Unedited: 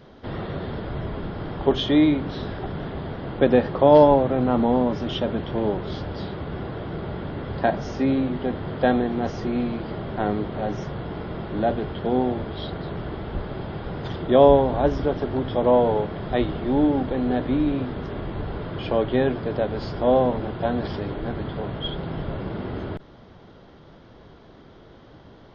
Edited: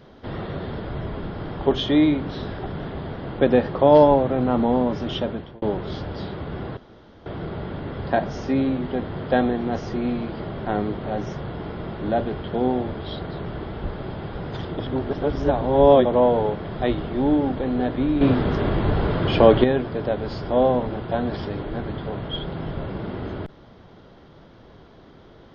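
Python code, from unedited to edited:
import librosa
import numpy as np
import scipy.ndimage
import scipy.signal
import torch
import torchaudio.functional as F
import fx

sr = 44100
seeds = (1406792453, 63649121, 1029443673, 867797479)

y = fx.edit(x, sr, fx.fade_out_span(start_s=5.21, length_s=0.41),
    fx.insert_room_tone(at_s=6.77, length_s=0.49),
    fx.reverse_span(start_s=14.3, length_s=1.26),
    fx.clip_gain(start_s=17.72, length_s=1.43, db=9.0), tone=tone)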